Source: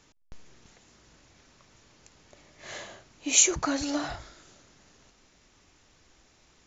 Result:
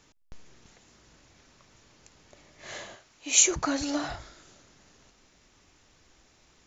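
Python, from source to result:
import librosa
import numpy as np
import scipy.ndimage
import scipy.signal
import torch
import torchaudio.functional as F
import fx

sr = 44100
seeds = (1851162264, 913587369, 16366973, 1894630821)

y = fx.low_shelf(x, sr, hz=470.0, db=-10.5, at=(2.95, 3.38))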